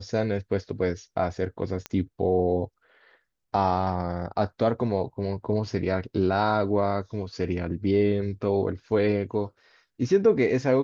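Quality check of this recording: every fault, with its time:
1.86 s: pop -17 dBFS

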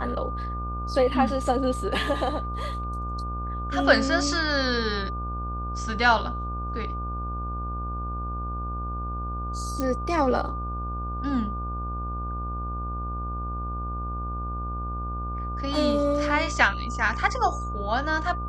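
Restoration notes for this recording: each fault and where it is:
buzz 60 Hz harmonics 25 -32 dBFS
whine 1.2 kHz -33 dBFS
9.80 s: pop -15 dBFS

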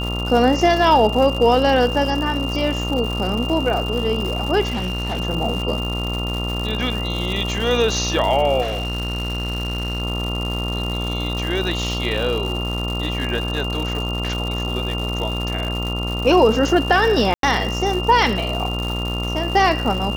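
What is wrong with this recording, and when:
buzz 60 Hz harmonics 23 -25 dBFS
crackle 230 per s -25 dBFS
whine 2.8 kHz -27 dBFS
4.68–5.21 s: clipped -19.5 dBFS
8.61–10.02 s: clipped -20 dBFS
17.34–17.43 s: dropout 92 ms

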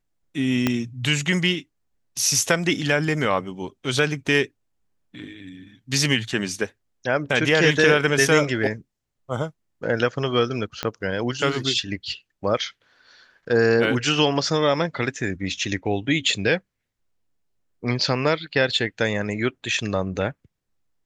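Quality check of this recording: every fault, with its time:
0.67 s: pop -6 dBFS
10.83 s: pop -11 dBFS

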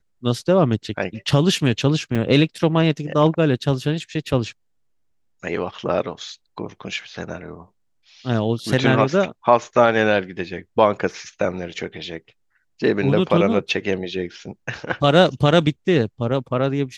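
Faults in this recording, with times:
2.15–2.16 s: dropout 5.2 ms

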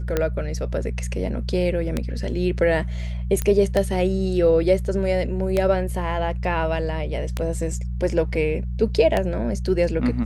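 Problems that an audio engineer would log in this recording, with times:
hum 60 Hz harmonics 3 -27 dBFS
tick 33 1/3 rpm -8 dBFS
3.42 s: pop -10 dBFS

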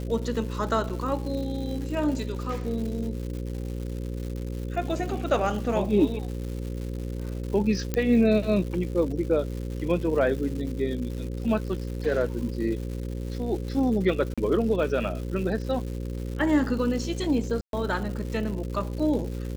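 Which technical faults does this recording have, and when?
buzz 60 Hz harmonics 9 -32 dBFS
crackle 280 per s -35 dBFS
0.89–0.90 s: dropout 7.7 ms
7.94 s: pop -12 dBFS
14.34–14.38 s: dropout 36 ms
17.61–17.73 s: dropout 122 ms

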